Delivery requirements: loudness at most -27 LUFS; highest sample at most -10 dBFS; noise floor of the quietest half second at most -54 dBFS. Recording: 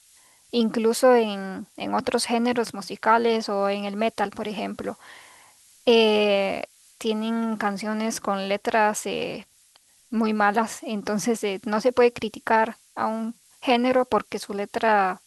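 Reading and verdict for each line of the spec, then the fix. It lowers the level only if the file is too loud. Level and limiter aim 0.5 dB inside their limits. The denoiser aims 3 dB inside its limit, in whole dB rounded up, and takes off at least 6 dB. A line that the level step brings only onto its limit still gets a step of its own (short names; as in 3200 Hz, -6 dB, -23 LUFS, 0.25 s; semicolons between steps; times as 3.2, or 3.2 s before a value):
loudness -24.0 LUFS: fail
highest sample -7.5 dBFS: fail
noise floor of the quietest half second -59 dBFS: OK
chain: gain -3.5 dB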